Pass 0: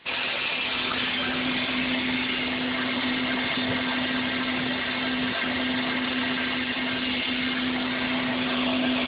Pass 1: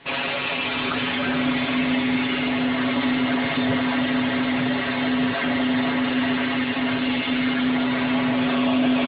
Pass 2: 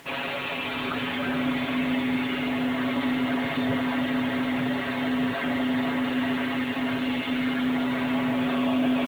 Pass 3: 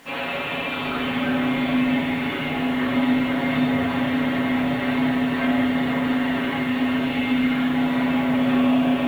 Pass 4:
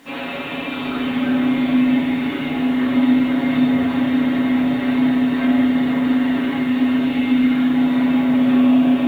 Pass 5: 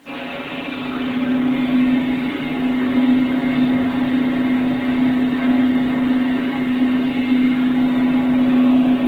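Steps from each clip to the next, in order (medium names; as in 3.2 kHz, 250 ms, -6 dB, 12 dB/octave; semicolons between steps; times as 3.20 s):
low-pass 1.4 kHz 6 dB/octave; comb 7.2 ms; in parallel at +0.5 dB: peak limiter -22.5 dBFS, peak gain reduction 9 dB
treble shelf 3.8 kHz -7.5 dB; upward compressor, threshold -43 dBFS; bit crusher 8-bit; trim -3.5 dB
simulated room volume 280 m³, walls mixed, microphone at 2.1 m; trim -3 dB
small resonant body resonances 280/3700 Hz, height 9 dB, ringing for 30 ms; trim -1.5 dB
Opus 16 kbps 48 kHz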